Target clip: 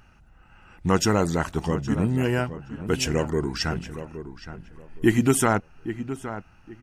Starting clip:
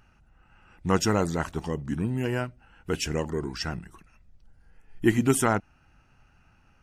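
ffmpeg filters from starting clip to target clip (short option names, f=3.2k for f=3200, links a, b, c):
-filter_complex "[0:a]asplit=2[a][b];[b]alimiter=limit=-18.5dB:level=0:latency=1:release=227,volume=-2dB[c];[a][c]amix=inputs=2:normalize=0,asplit=2[d][e];[e]adelay=818,lowpass=f=2.3k:p=1,volume=-11.5dB,asplit=2[f][g];[g]adelay=818,lowpass=f=2.3k:p=1,volume=0.24,asplit=2[h][i];[i]adelay=818,lowpass=f=2.3k:p=1,volume=0.24[j];[d][f][h][j]amix=inputs=4:normalize=0"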